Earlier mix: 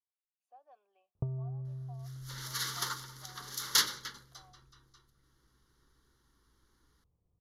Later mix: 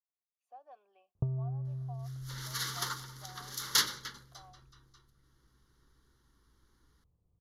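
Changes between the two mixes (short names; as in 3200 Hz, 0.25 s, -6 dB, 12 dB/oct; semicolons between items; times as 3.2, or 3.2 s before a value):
speech +5.5 dB; master: add tone controls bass +3 dB, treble -1 dB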